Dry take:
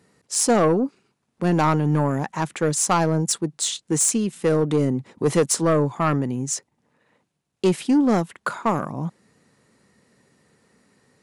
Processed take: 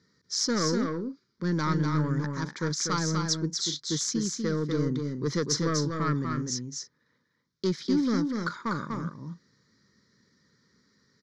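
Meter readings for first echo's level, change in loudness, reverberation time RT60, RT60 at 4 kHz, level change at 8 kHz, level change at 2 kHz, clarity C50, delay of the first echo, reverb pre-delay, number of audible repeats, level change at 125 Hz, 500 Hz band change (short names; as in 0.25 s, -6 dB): -4.5 dB, -7.0 dB, none, none, -8.0 dB, -5.0 dB, none, 0.245 s, none, 2, -5.0 dB, -10.5 dB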